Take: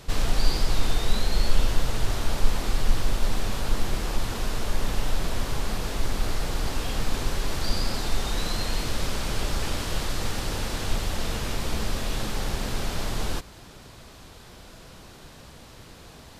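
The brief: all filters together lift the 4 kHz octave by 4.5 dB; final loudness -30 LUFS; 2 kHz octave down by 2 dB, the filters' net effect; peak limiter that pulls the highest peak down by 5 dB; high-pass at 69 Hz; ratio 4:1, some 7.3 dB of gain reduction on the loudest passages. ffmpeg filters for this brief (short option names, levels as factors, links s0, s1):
-af "highpass=69,equalizer=f=2000:t=o:g=-4.5,equalizer=f=4000:t=o:g=6.5,acompressor=threshold=0.0224:ratio=4,volume=2.24,alimiter=limit=0.0944:level=0:latency=1"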